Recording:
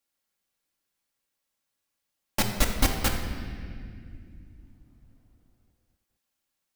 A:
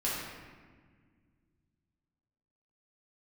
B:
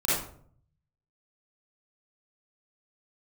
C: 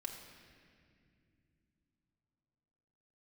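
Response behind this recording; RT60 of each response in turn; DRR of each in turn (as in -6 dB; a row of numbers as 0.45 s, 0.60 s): C; 1.6 s, 0.55 s, no single decay rate; -8.0 dB, -10.0 dB, 1.0 dB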